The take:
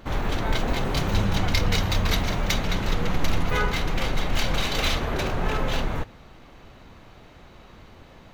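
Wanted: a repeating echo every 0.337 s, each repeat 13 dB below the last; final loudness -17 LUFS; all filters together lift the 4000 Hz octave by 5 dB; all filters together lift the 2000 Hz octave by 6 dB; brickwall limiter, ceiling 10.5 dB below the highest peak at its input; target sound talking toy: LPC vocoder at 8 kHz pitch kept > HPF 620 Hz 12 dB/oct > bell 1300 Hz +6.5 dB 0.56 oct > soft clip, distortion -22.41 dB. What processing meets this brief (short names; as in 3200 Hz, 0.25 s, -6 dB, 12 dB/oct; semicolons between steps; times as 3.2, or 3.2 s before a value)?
bell 2000 Hz +4 dB; bell 4000 Hz +4.5 dB; limiter -14.5 dBFS; feedback echo 0.337 s, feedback 22%, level -13 dB; LPC vocoder at 8 kHz pitch kept; HPF 620 Hz 12 dB/oct; bell 1300 Hz +6.5 dB 0.56 oct; soft clip -13.5 dBFS; gain +10 dB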